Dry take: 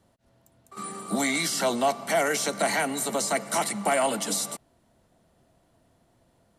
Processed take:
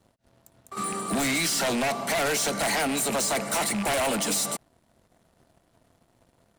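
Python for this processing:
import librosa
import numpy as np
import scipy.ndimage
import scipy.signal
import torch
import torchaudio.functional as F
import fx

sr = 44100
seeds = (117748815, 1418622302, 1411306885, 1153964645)

y = fx.rattle_buzz(x, sr, strikes_db=-37.0, level_db=-26.0)
y = 10.0 ** (-22.0 / 20.0) * (np.abs((y / 10.0 ** (-22.0 / 20.0) + 3.0) % 4.0 - 2.0) - 1.0)
y = fx.leveller(y, sr, passes=2)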